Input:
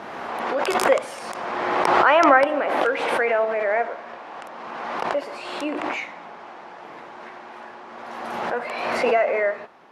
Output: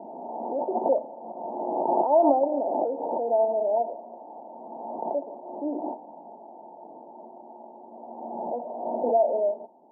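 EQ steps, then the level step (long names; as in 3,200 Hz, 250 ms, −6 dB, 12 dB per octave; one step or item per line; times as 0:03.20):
high-pass filter 210 Hz 24 dB per octave
Chebyshev low-pass with heavy ripple 930 Hz, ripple 6 dB
0.0 dB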